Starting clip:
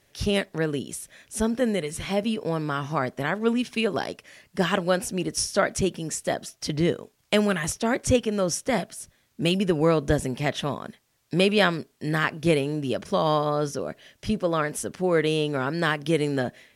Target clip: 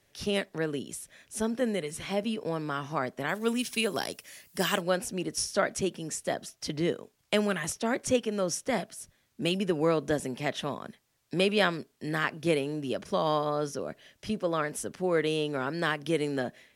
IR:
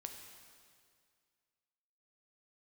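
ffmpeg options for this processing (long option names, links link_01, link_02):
-filter_complex "[0:a]asplit=3[link_01][link_02][link_03];[link_01]afade=type=out:start_time=3.28:duration=0.02[link_04];[link_02]aemphasis=mode=production:type=75fm,afade=type=in:start_time=3.28:duration=0.02,afade=type=out:start_time=4.8:duration=0.02[link_05];[link_03]afade=type=in:start_time=4.8:duration=0.02[link_06];[link_04][link_05][link_06]amix=inputs=3:normalize=0,acrossover=split=160|4300[link_07][link_08][link_09];[link_07]acompressor=threshold=-44dB:ratio=6[link_10];[link_10][link_08][link_09]amix=inputs=3:normalize=0,volume=-4.5dB"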